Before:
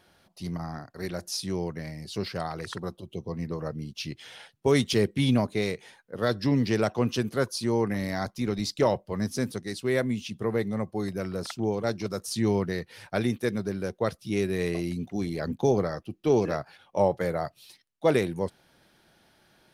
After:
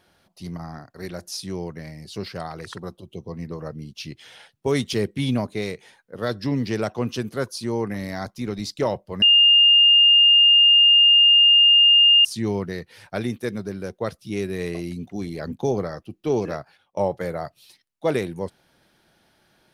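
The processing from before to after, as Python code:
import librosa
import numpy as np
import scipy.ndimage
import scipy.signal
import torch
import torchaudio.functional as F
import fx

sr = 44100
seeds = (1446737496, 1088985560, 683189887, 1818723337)

y = fx.edit(x, sr, fx.bleep(start_s=9.22, length_s=3.03, hz=2820.0, db=-10.5),
    fx.fade_out_to(start_s=16.53, length_s=0.44, floor_db=-16.0), tone=tone)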